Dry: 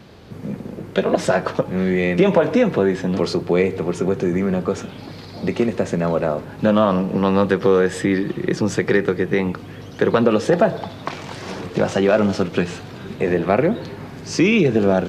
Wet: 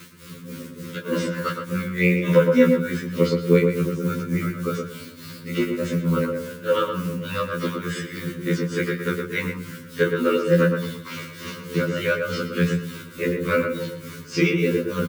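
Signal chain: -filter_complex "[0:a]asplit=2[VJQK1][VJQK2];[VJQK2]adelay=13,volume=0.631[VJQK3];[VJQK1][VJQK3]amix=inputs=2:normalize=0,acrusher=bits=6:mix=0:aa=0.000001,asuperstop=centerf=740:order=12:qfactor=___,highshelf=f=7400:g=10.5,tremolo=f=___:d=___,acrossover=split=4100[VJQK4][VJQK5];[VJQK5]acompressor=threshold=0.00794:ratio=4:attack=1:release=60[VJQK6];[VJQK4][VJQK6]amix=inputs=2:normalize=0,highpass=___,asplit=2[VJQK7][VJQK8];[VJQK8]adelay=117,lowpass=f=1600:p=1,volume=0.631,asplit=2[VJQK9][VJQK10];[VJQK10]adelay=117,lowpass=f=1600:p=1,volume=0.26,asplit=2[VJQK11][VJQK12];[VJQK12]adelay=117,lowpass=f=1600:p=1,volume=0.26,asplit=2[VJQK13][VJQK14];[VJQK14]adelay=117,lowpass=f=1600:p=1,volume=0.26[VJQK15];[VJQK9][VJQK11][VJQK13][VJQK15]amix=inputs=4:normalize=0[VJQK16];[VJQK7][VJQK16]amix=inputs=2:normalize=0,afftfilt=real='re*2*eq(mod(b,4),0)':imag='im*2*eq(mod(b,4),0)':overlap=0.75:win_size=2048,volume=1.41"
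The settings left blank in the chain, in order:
1.8, 3.4, 0.9, 130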